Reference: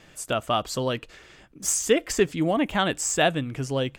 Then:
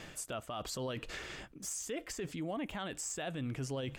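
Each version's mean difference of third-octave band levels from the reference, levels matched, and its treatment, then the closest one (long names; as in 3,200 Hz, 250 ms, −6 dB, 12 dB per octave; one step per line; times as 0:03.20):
6.5 dB: reversed playback
downward compressor 6 to 1, threshold −37 dBFS, peak gain reduction 21 dB
reversed playback
brickwall limiter −35.5 dBFS, peak gain reduction 10.5 dB
level +5 dB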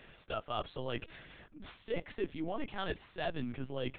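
9.5 dB: linear-prediction vocoder at 8 kHz pitch kept
reversed playback
downward compressor 6 to 1, threshold −30 dBFS, peak gain reduction 14.5 dB
reversed playback
level −3.5 dB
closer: first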